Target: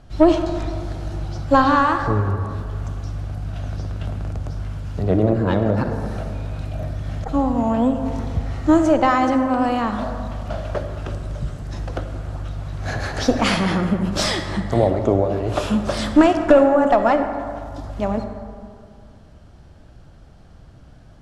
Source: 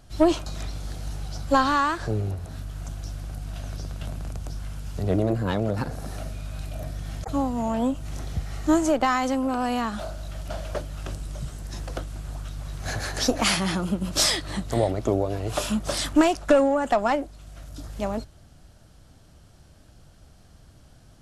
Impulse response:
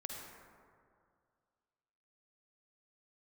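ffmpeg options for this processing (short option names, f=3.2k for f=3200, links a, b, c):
-filter_complex "[0:a]aemphasis=mode=reproduction:type=75fm,asplit=2[a][b];[1:a]atrim=start_sample=2205[c];[b][c]afir=irnorm=-1:irlink=0,volume=2dB[d];[a][d]amix=inputs=2:normalize=0"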